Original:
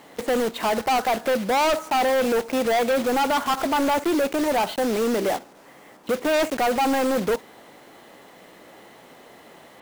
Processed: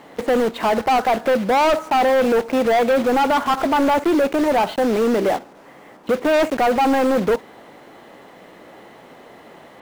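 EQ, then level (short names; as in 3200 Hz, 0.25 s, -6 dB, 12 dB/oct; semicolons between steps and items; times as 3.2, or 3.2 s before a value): high shelf 3700 Hz -10 dB; +5.0 dB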